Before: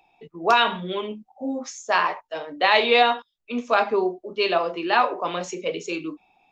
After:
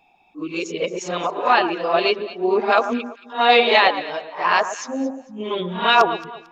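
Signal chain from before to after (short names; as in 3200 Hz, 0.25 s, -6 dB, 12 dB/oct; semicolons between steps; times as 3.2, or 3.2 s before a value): whole clip reversed; echo with dull and thin repeats by turns 0.112 s, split 1500 Hz, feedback 51%, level -10 dB; gain +3 dB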